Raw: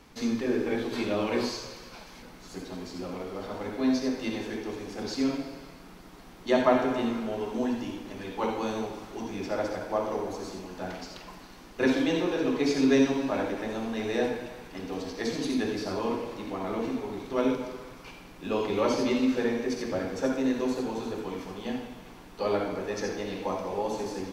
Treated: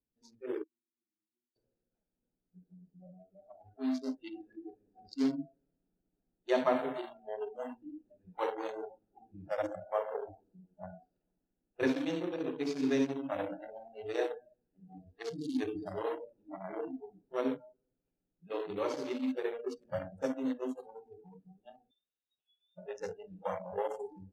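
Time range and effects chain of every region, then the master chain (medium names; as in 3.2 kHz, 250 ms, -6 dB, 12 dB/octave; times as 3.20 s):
0.63–1.56 s: brick-wall FIR band-stop 390–9500 Hz + differentiator
21.91–22.78 s: distance through air 150 m + compression 10:1, threshold -36 dBFS + frequency inversion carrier 3.8 kHz
whole clip: local Wiener filter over 41 samples; spectral noise reduction 30 dB; gain riding within 3 dB 0.5 s; trim -4.5 dB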